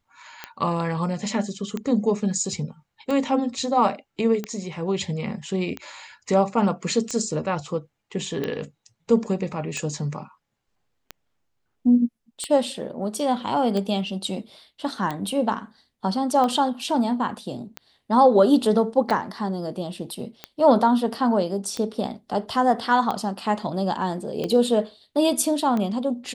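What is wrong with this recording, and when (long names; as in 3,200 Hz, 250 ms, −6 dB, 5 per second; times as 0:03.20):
scratch tick 45 rpm −15 dBFS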